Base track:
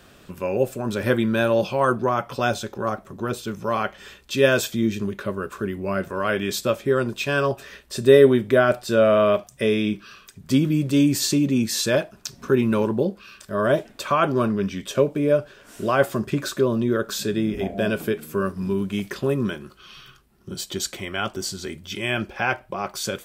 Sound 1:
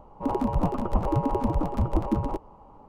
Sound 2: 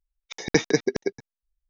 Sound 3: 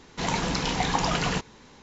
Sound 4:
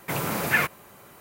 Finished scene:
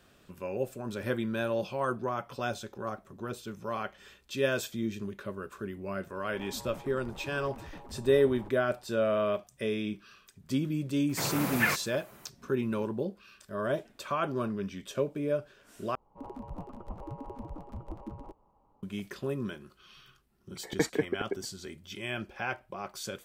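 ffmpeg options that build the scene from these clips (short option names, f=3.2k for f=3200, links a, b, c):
-filter_complex "[1:a]asplit=2[a][b];[0:a]volume=-11dB[c];[a]asoftclip=type=hard:threshold=-27dB[d];[2:a]lowpass=f=2.1k:w=0.5412,lowpass=f=2.1k:w=1.3066[e];[c]asplit=2[f][g];[f]atrim=end=15.954[h];[b]atrim=end=2.88,asetpts=PTS-STARTPTS,volume=-17dB[i];[g]atrim=start=18.826[j];[d]atrim=end=2.88,asetpts=PTS-STARTPTS,volume=-16dB,afade=t=in:d=0.004:c=hsin,afade=t=out:st=2.876:d=0.004:c=hsin,adelay=6120[k];[4:a]atrim=end=1.2,asetpts=PTS-STARTPTS,volume=-5dB,afade=t=in:d=0.004:c=hsin,afade=t=out:st=1.196:d=0.004:c=hsin,adelay=11090[l];[e]atrim=end=1.69,asetpts=PTS-STARTPTS,volume=-7.5dB,afade=t=in:d=0.004:c=hsin,afade=t=out:st=1.686:d=0.004:c=hsin,adelay=20250[m];[h][i]acrossfade=d=0.004:c1=hsin:c2=hsin[n];[n][j]acrossfade=d=0.004:c1=hsin:c2=hsin[o];[o][k][l][m]amix=inputs=4:normalize=0"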